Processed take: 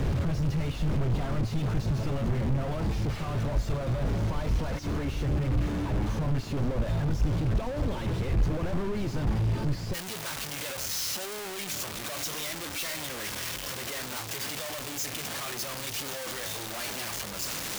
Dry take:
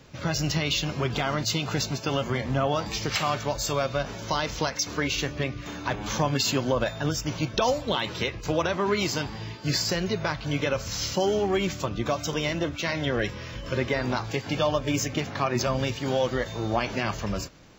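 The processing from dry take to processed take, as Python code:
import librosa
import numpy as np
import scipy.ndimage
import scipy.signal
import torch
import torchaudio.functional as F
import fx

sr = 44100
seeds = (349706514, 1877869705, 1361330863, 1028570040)

y = np.sign(x) * np.sqrt(np.mean(np.square(x)))
y = fx.tilt_eq(y, sr, slope=fx.steps((0.0, -4.0), (9.93, 2.0)))
y = y * librosa.db_to_amplitude(-8.5)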